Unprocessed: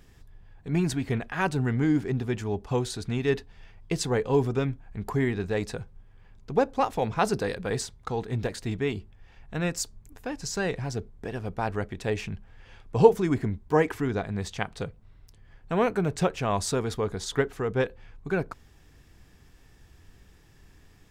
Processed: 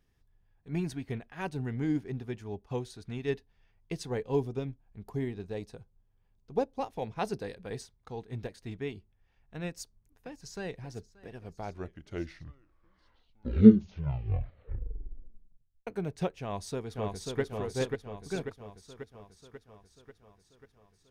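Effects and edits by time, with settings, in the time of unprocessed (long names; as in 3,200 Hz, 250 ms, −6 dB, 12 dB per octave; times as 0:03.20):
0:04.40–0:06.86: parametric band 1,800 Hz −6 dB 1.1 octaves
0:09.67–0:10.78: delay throw 580 ms, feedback 70%, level −16 dB
0:11.30: tape stop 4.57 s
0:16.41–0:17.41: delay throw 540 ms, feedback 70%, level −2.5 dB
whole clip: notch filter 7,500 Hz, Q 7; dynamic equaliser 1,300 Hz, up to −6 dB, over −45 dBFS, Q 1.9; expander for the loud parts 1.5 to 1, over −44 dBFS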